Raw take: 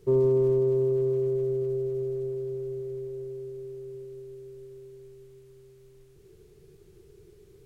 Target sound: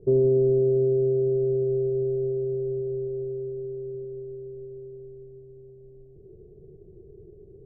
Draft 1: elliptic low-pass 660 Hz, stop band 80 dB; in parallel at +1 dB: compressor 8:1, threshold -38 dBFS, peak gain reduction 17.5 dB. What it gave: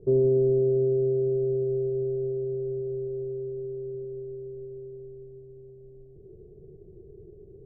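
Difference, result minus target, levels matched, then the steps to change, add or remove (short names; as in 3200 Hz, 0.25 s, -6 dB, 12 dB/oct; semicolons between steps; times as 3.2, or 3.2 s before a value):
compressor: peak gain reduction +7 dB
change: compressor 8:1, threshold -30 dBFS, peak gain reduction 10.5 dB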